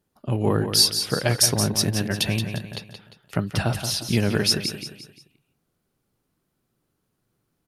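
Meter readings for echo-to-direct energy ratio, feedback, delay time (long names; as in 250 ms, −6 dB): −7.5 dB, 40%, 175 ms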